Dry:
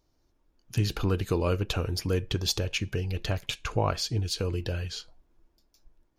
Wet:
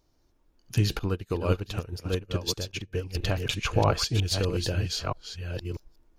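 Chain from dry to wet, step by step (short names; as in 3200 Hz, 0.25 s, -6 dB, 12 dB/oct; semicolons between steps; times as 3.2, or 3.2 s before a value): reverse delay 0.641 s, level -5 dB; 0.99–3.15 upward expander 2.5:1, over -37 dBFS; gain +2.5 dB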